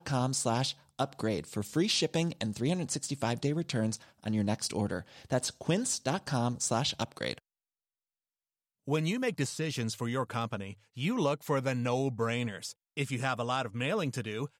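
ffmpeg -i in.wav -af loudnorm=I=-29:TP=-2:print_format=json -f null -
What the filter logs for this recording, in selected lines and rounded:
"input_i" : "-32.6",
"input_tp" : "-16.2",
"input_lra" : "3.3",
"input_thresh" : "-42.7",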